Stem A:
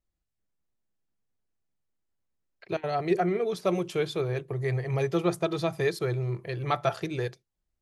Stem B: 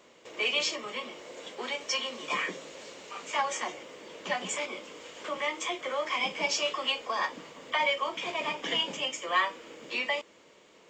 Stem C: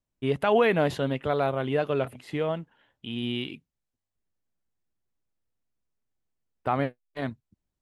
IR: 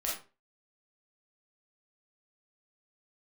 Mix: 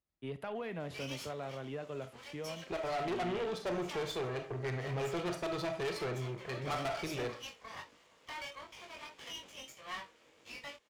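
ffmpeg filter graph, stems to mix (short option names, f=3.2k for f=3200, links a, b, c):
-filter_complex "[0:a]lowshelf=f=320:g=-6,adynamicsmooth=sensitivity=8:basefreq=5.2k,aeval=exprs='(tanh(35.5*val(0)+0.7)-tanh(0.7))/35.5':c=same,volume=-1.5dB,asplit=2[a][b];[b]volume=-5dB[c];[1:a]lowshelf=f=320:g=-9.5,aeval=exprs='max(val(0),0)':c=same,flanger=delay=20:depth=2.8:speed=1.6,adelay=550,volume=-8dB[d];[2:a]acrossover=split=200[e][f];[f]acompressor=threshold=-24dB:ratio=6[g];[e][g]amix=inputs=2:normalize=0,volume=-14dB,asplit=2[h][i];[i]volume=-16dB[j];[3:a]atrim=start_sample=2205[k];[c][j]amix=inputs=2:normalize=0[l];[l][k]afir=irnorm=-1:irlink=0[m];[a][d][h][m]amix=inputs=4:normalize=0,highpass=53,asoftclip=type=tanh:threshold=-30.5dB"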